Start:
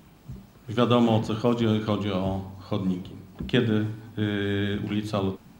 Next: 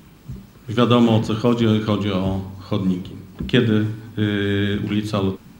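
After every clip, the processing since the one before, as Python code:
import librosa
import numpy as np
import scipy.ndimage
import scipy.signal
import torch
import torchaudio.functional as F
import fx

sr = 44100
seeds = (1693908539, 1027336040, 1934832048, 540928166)

y = fx.peak_eq(x, sr, hz=710.0, db=-7.0, octaves=0.56)
y = F.gain(torch.from_numpy(y), 6.5).numpy()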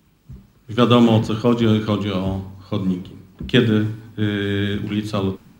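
y = fx.band_widen(x, sr, depth_pct=40)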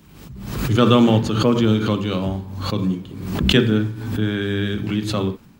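y = fx.pre_swell(x, sr, db_per_s=51.0)
y = F.gain(torch.from_numpy(y), -1.0).numpy()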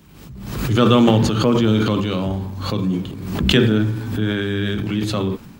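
y = fx.transient(x, sr, attack_db=0, sustain_db=8)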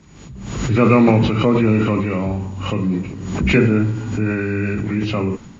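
y = fx.freq_compress(x, sr, knee_hz=1300.0, ratio=1.5)
y = F.gain(torch.from_numpy(y), 1.0).numpy()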